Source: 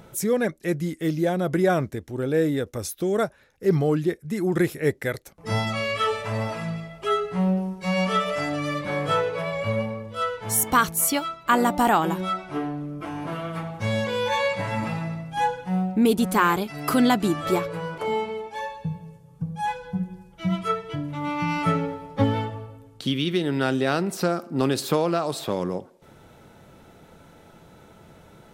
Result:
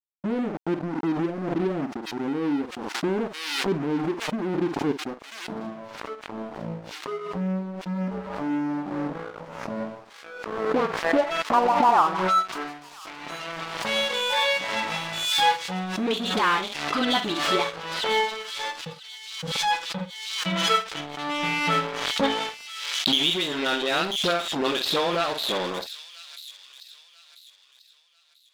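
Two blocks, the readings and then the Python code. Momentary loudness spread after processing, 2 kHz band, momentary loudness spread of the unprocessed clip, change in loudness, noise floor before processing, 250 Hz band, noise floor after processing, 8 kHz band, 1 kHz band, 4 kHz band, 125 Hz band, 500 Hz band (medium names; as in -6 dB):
15 LU, +1.5 dB, 11 LU, -0.5 dB, -51 dBFS, -3.5 dB, -55 dBFS, -5.0 dB, +0.5 dB, +8.5 dB, -8.5 dB, -3.0 dB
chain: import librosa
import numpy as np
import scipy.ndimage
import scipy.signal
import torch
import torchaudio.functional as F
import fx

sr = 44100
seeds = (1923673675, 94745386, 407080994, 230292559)

p1 = fx.filter_sweep_lowpass(x, sr, from_hz=280.0, to_hz=3600.0, start_s=9.99, end_s=13.63, q=3.4)
p2 = np.clip(p1, -10.0 ** (-17.5 / 20.0), 10.0 ** (-17.5 / 20.0))
p3 = p1 + (p2 * 10.0 ** (-8.0 / 20.0))
p4 = scipy.signal.sosfilt(scipy.signal.butter(8, 150.0, 'highpass', fs=sr, output='sos'), p3)
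p5 = fx.dispersion(p4, sr, late='highs', ms=55.0, hz=580.0)
p6 = np.sign(p5) * np.maximum(np.abs(p5) - 10.0 ** (-28.0 / 20.0), 0.0)
p7 = fx.high_shelf(p6, sr, hz=7500.0, db=-9.0)
p8 = fx.doubler(p7, sr, ms=48.0, db=-11.0)
p9 = p8 + fx.echo_wet_highpass(p8, sr, ms=990, feedback_pct=34, hz=4400.0, wet_db=-7.5, dry=0)
p10 = fx.rider(p9, sr, range_db=4, speed_s=0.5)
p11 = fx.low_shelf(p10, sr, hz=350.0, db=-12.0)
y = fx.pre_swell(p11, sr, db_per_s=44.0)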